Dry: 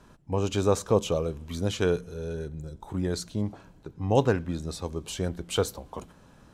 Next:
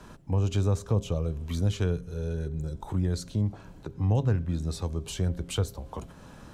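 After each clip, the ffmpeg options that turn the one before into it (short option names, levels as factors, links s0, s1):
-filter_complex "[0:a]bandreject=f=134.2:t=h:w=4,bandreject=f=268.4:t=h:w=4,bandreject=f=402.6:t=h:w=4,bandreject=f=536.8:t=h:w=4,bandreject=f=671:t=h:w=4,acrossover=split=150[s0][s1];[s1]acompressor=threshold=0.00501:ratio=2.5[s2];[s0][s2]amix=inputs=2:normalize=0,volume=2.24"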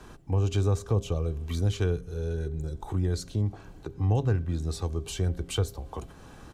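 -af "aecho=1:1:2.6:0.36"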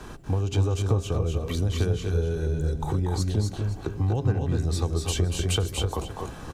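-filter_complex "[0:a]acompressor=threshold=0.0355:ratio=6,asplit=2[s0][s1];[s1]aecho=0:1:238|259|517:0.447|0.531|0.15[s2];[s0][s2]amix=inputs=2:normalize=0,volume=2.24"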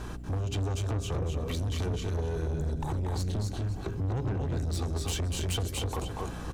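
-af "asoftclip=type=tanh:threshold=0.0422,aeval=exprs='val(0)+0.01*(sin(2*PI*60*n/s)+sin(2*PI*2*60*n/s)/2+sin(2*PI*3*60*n/s)/3+sin(2*PI*4*60*n/s)/4+sin(2*PI*5*60*n/s)/5)':c=same"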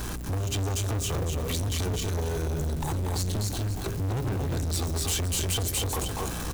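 -af "aeval=exprs='val(0)+0.5*0.00794*sgn(val(0))':c=same,crystalizer=i=2.5:c=0,asoftclip=type=tanh:threshold=0.0473,volume=1.41"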